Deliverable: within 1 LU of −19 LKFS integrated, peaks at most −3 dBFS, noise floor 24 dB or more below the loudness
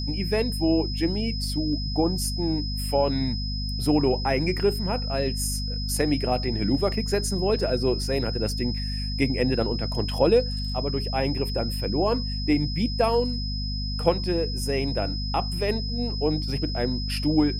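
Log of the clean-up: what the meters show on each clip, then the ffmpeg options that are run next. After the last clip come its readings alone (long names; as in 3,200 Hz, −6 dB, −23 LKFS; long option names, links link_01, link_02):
mains hum 50 Hz; hum harmonics up to 250 Hz; level of the hum −27 dBFS; interfering tone 5,100 Hz; level of the tone −33 dBFS; integrated loudness −25.5 LKFS; sample peak −6.0 dBFS; target loudness −19.0 LKFS
→ -af "bandreject=frequency=50:width_type=h:width=4,bandreject=frequency=100:width_type=h:width=4,bandreject=frequency=150:width_type=h:width=4,bandreject=frequency=200:width_type=h:width=4,bandreject=frequency=250:width_type=h:width=4"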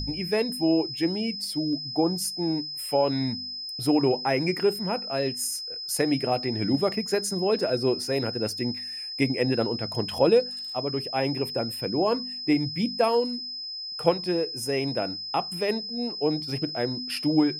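mains hum none found; interfering tone 5,100 Hz; level of the tone −33 dBFS
→ -af "bandreject=frequency=5100:width=30"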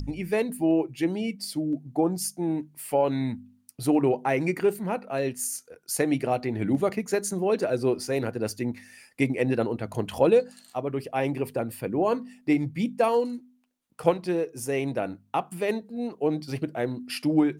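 interfering tone none found; integrated loudness −27.0 LKFS; sample peak −6.5 dBFS; target loudness −19.0 LKFS
→ -af "volume=8dB,alimiter=limit=-3dB:level=0:latency=1"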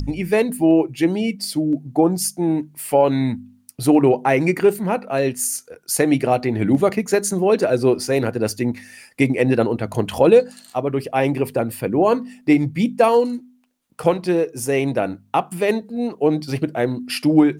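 integrated loudness −19.5 LKFS; sample peak −3.0 dBFS; background noise floor −55 dBFS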